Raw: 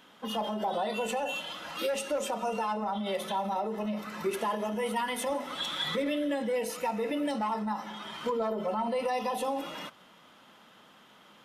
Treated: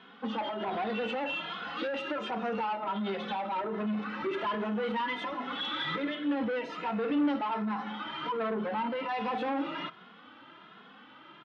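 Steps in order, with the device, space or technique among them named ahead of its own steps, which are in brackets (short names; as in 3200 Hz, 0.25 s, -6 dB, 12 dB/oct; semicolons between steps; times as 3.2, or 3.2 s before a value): barber-pole flanger into a guitar amplifier (endless flanger 2.4 ms +1.3 Hz; soft clip -34 dBFS, distortion -11 dB; speaker cabinet 97–3600 Hz, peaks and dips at 300 Hz +6 dB, 590 Hz -5 dB, 1400 Hz +5 dB); gain +6 dB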